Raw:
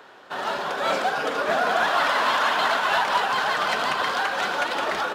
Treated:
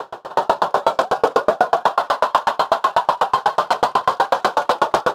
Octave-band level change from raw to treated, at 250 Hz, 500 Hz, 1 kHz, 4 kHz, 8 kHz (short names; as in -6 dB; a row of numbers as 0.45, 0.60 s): +4.0, +7.5, +6.5, -2.0, +0.5 dB